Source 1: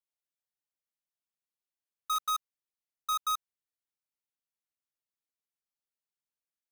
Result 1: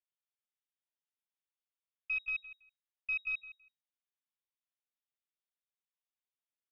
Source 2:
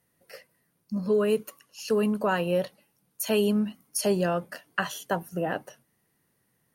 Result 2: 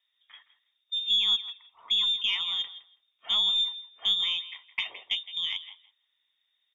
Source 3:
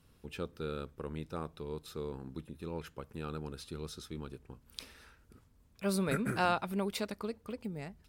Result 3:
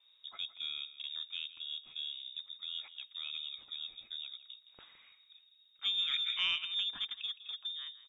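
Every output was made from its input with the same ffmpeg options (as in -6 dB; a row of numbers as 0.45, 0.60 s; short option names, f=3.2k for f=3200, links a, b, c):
-filter_complex "[0:a]bandreject=f=530:w=12,lowpass=f=3.2k:t=q:w=0.5098,lowpass=f=3.2k:t=q:w=0.6013,lowpass=f=3.2k:t=q:w=0.9,lowpass=f=3.2k:t=q:w=2.563,afreqshift=-3800,aemphasis=mode=production:type=75fm,asplit=2[a][b];[b]aecho=0:1:164|328:0.178|0.0267[c];[a][c]amix=inputs=2:normalize=0,aeval=exprs='0.447*(cos(1*acos(clip(val(0)/0.447,-1,1)))-cos(1*PI/2))+0.00891*(cos(4*acos(clip(val(0)/0.447,-1,1)))-cos(4*PI/2))':c=same,volume=-6.5dB"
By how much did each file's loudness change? -3.5, +1.5, +1.5 LU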